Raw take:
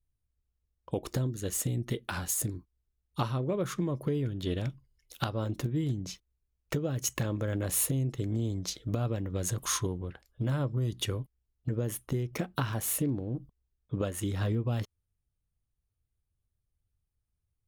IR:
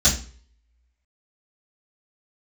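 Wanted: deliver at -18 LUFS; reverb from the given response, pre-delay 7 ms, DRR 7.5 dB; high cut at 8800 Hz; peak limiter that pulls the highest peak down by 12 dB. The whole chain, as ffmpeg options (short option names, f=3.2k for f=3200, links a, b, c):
-filter_complex "[0:a]lowpass=8.8k,alimiter=level_in=2.5dB:limit=-24dB:level=0:latency=1,volume=-2.5dB,asplit=2[a][b];[1:a]atrim=start_sample=2205,adelay=7[c];[b][c]afir=irnorm=-1:irlink=0,volume=-23.5dB[d];[a][d]amix=inputs=2:normalize=0,volume=15dB"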